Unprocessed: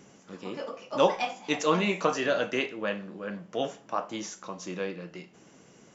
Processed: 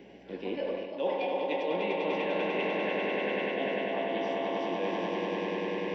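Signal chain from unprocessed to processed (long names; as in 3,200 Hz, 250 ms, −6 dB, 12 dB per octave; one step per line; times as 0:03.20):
on a send: delay with a band-pass on its return 74 ms, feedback 79%, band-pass 1,100 Hz, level −5.5 dB
on the sum: mains hum 60 Hz, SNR 30 dB
three-way crossover with the lows and the highs turned down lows −20 dB, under 240 Hz, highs −13 dB, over 2,700 Hz
phaser with its sweep stopped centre 3,000 Hz, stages 4
echo that builds up and dies away 99 ms, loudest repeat 5, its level −6 dB
reversed playback
downward compressor 6 to 1, threshold −37 dBFS, peak gain reduction 16 dB
reversed playback
level +8.5 dB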